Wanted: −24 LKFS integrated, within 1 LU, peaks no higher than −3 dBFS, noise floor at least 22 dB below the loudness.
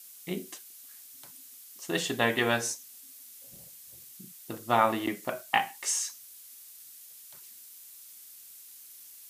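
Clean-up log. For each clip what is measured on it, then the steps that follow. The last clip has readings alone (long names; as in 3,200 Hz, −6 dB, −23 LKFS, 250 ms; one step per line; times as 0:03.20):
background noise floor −50 dBFS; target noise floor −52 dBFS; integrated loudness −29.5 LKFS; sample peak −9.0 dBFS; target loudness −24.0 LKFS
→ broadband denoise 6 dB, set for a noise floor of −50 dBFS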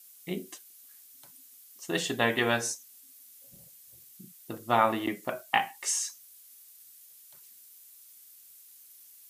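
background noise floor −54 dBFS; integrated loudness −29.5 LKFS; sample peak −9.0 dBFS; target loudness −24.0 LKFS
→ level +5.5 dB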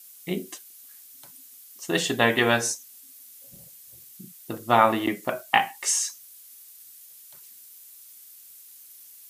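integrated loudness −24.0 LKFS; sample peak −3.5 dBFS; background noise floor −49 dBFS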